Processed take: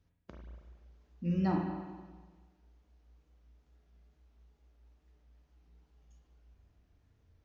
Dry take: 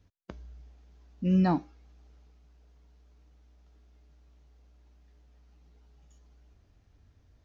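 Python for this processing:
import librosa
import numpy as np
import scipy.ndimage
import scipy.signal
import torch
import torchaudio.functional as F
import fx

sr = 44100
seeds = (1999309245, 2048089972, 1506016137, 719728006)

y = fx.wow_flutter(x, sr, seeds[0], rate_hz=2.1, depth_cents=68.0)
y = fx.rev_spring(y, sr, rt60_s=1.4, pass_ms=(35, 47), chirp_ms=40, drr_db=0.0)
y = y * 10.0 ** (-8.0 / 20.0)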